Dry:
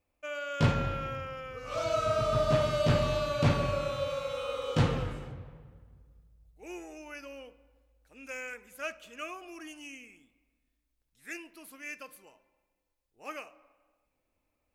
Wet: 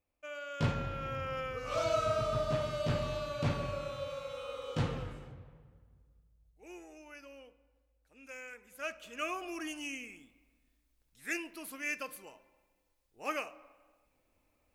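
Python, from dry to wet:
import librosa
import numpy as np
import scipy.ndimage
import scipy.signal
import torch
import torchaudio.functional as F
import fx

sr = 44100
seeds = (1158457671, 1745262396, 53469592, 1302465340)

y = fx.gain(x, sr, db=fx.line((0.9, -6.0), (1.39, 4.0), (2.54, -7.0), (8.51, -7.0), (9.37, 5.0)))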